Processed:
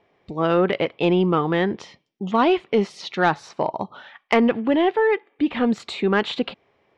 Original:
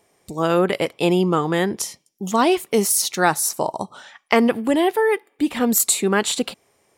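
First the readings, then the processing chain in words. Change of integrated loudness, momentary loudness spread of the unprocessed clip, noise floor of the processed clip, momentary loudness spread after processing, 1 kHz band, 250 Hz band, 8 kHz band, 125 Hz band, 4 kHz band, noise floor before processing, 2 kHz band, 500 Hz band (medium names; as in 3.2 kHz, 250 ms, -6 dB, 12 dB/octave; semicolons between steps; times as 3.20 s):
-2.0 dB, 10 LU, -66 dBFS, 9 LU, -1.0 dB, -0.5 dB, under -25 dB, -0.5 dB, -4.0 dB, -65 dBFS, -1.0 dB, -0.5 dB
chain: low-pass 3.5 kHz 24 dB/octave; saturation -6.5 dBFS, distortion -23 dB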